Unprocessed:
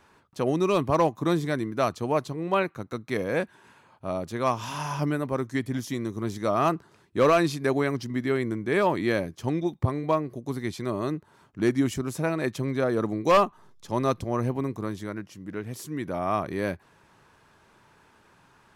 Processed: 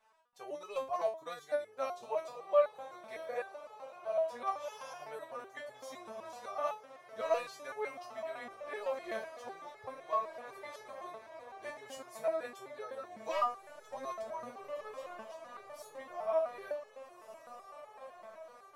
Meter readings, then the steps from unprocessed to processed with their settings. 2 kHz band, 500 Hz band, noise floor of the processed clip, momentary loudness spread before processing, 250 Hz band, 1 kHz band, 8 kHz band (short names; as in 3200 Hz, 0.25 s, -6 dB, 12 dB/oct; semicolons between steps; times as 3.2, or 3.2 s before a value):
-13.5 dB, -9.5 dB, -58 dBFS, 11 LU, -29.0 dB, -10.0 dB, -13.5 dB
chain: resonant low shelf 430 Hz -11 dB, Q 3; diffused feedback echo 1.63 s, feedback 59%, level -10 dB; stepped resonator 7.9 Hz 220–430 Hz